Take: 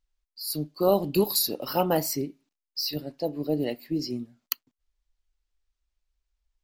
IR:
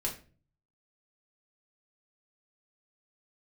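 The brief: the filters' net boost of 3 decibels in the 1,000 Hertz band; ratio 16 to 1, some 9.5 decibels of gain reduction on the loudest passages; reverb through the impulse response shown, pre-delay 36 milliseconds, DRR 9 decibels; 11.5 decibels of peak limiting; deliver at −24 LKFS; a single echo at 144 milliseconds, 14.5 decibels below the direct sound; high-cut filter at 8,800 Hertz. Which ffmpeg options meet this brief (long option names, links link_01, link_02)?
-filter_complex "[0:a]lowpass=8800,equalizer=frequency=1000:width_type=o:gain=4,acompressor=threshold=-25dB:ratio=16,alimiter=limit=-22dB:level=0:latency=1,aecho=1:1:144:0.188,asplit=2[link_01][link_02];[1:a]atrim=start_sample=2205,adelay=36[link_03];[link_02][link_03]afir=irnorm=-1:irlink=0,volume=-12dB[link_04];[link_01][link_04]amix=inputs=2:normalize=0,volume=9dB"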